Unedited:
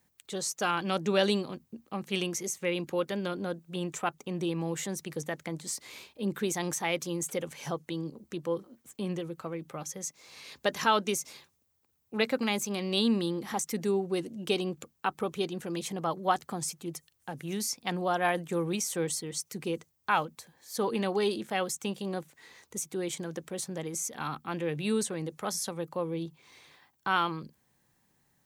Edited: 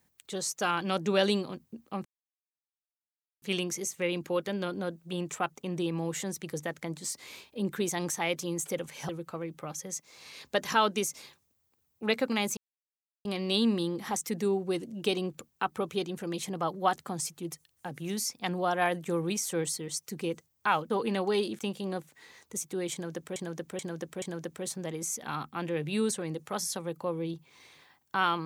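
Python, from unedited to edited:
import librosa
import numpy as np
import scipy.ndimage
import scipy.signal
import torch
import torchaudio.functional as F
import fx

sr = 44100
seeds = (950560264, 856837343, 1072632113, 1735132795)

y = fx.edit(x, sr, fx.insert_silence(at_s=2.05, length_s=1.37),
    fx.cut(start_s=7.72, length_s=1.48),
    fx.insert_silence(at_s=12.68, length_s=0.68),
    fx.cut(start_s=20.33, length_s=0.45),
    fx.cut(start_s=21.47, length_s=0.33),
    fx.repeat(start_s=23.14, length_s=0.43, count=4), tone=tone)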